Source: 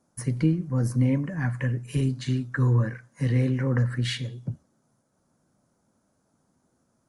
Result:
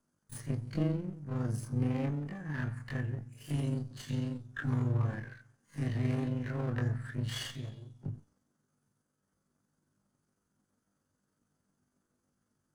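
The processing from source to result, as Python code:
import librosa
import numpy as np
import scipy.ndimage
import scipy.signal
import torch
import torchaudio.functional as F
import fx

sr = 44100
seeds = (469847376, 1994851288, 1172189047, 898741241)

y = fx.lower_of_two(x, sr, delay_ms=0.63)
y = fx.stretch_grains(y, sr, factor=1.8, grain_ms=91.0)
y = F.gain(torch.from_numpy(y), -7.0).numpy()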